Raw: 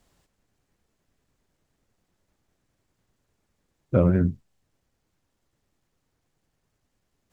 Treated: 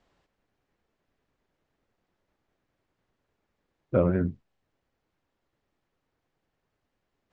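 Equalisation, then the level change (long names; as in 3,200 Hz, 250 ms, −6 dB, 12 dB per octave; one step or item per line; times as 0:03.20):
high-frequency loss of the air 120 metres
bass and treble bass −7 dB, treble −4 dB
0.0 dB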